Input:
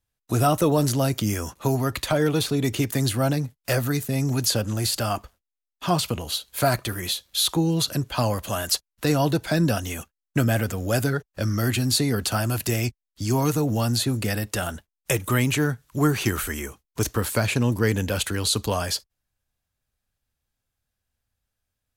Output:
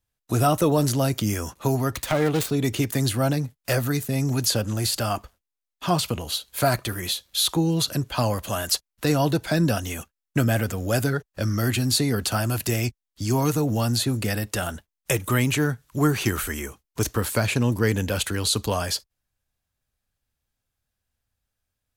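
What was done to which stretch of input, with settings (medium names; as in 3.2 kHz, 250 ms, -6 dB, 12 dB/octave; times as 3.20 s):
1.91–2.51 s: self-modulated delay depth 0.23 ms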